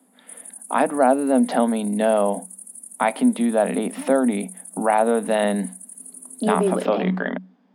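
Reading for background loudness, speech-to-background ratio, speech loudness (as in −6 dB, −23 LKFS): −37.5 LKFS, 16.5 dB, −21.0 LKFS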